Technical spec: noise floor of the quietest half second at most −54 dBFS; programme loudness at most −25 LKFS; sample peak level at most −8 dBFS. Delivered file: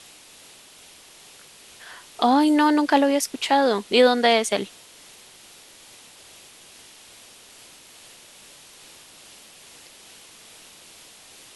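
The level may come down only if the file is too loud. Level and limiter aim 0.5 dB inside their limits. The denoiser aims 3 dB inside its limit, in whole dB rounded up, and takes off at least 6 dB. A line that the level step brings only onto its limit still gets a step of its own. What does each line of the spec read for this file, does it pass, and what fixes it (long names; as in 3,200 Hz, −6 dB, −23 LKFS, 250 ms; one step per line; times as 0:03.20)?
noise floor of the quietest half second −49 dBFS: out of spec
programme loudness −19.5 LKFS: out of spec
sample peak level −5.5 dBFS: out of spec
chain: level −6 dB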